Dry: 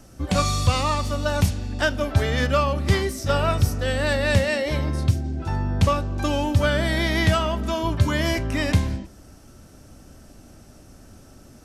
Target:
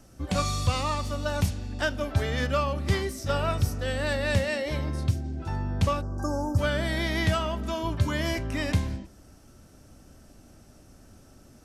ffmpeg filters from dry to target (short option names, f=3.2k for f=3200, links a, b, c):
-filter_complex "[0:a]asplit=3[a][b][c];[a]afade=t=out:st=6.01:d=0.02[d];[b]asuperstop=centerf=2800:order=12:qfactor=0.83,afade=t=in:st=6.01:d=0.02,afade=t=out:st=6.57:d=0.02[e];[c]afade=t=in:st=6.57:d=0.02[f];[d][e][f]amix=inputs=3:normalize=0,volume=-5.5dB"